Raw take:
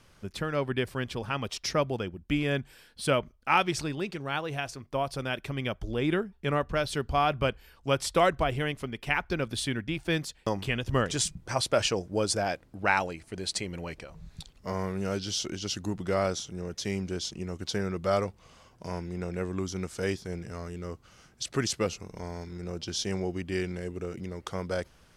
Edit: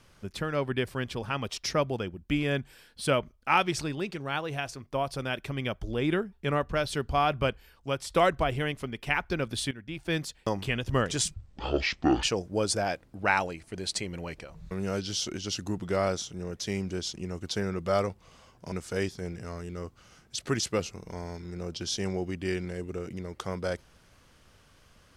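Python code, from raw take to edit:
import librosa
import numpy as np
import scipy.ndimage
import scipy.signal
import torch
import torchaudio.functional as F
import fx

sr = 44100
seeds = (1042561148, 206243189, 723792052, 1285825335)

y = fx.edit(x, sr, fx.fade_out_to(start_s=7.49, length_s=0.61, floor_db=-7.0),
    fx.fade_in_from(start_s=9.71, length_s=0.5, floor_db=-16.5),
    fx.speed_span(start_s=11.34, length_s=0.49, speed=0.55),
    fx.cut(start_s=14.31, length_s=0.58),
    fx.cut(start_s=18.9, length_s=0.89), tone=tone)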